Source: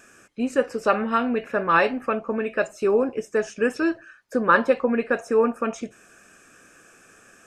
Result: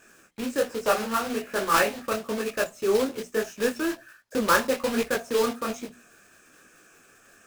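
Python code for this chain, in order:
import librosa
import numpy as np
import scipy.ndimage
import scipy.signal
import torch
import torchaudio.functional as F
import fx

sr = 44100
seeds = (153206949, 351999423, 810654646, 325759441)

y = fx.block_float(x, sr, bits=3)
y = fx.hum_notches(y, sr, base_hz=60, count=4)
y = fx.detune_double(y, sr, cents=41)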